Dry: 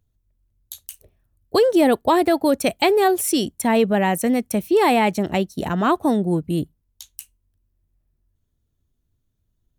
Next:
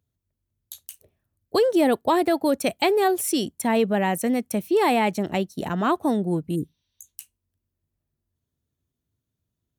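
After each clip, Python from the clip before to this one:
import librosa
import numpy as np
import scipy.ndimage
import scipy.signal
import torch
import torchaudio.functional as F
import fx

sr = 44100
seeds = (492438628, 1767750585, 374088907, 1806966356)

y = scipy.signal.sosfilt(scipy.signal.butter(2, 95.0, 'highpass', fs=sr, output='sos'), x)
y = fx.spec_repair(y, sr, seeds[0], start_s=6.58, length_s=0.49, low_hz=510.0, high_hz=6100.0, source='after')
y = y * 10.0 ** (-3.5 / 20.0)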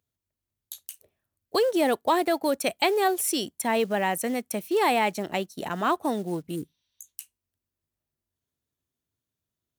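y = fx.quant_float(x, sr, bits=4)
y = fx.low_shelf(y, sr, hz=300.0, db=-11.5)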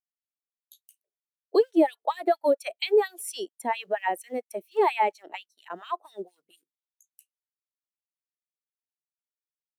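y = fx.filter_lfo_highpass(x, sr, shape='sine', hz=4.3, low_hz=310.0, high_hz=3200.0, q=1.7)
y = fx.spectral_expand(y, sr, expansion=1.5)
y = y * 10.0 ** (-2.0 / 20.0)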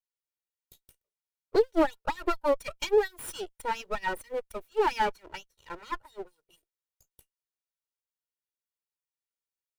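y = fx.lower_of_two(x, sr, delay_ms=2.1)
y = y * 10.0 ** (-2.0 / 20.0)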